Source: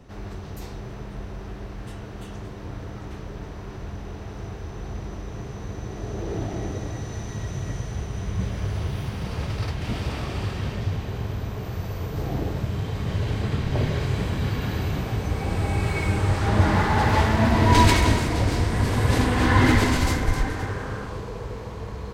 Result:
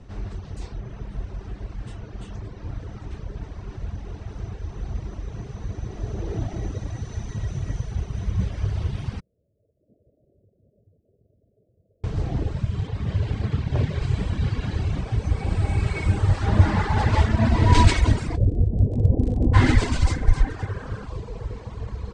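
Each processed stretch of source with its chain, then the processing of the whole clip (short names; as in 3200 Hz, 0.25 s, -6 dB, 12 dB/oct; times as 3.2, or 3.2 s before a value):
9.2–12.04 steep low-pass 630 Hz 96 dB/oct + differentiator
12.87–14.02 self-modulated delay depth 0.16 ms + HPF 49 Hz + high shelf 5300 Hz -4.5 dB
18.35–19.53 steep low-pass 630 Hz + crackle 31/s -29 dBFS + doubler 21 ms -11 dB
whole clip: Chebyshev low-pass 8600 Hz, order 4; reverb removal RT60 1.2 s; low shelf 130 Hz +10.5 dB; gain -1 dB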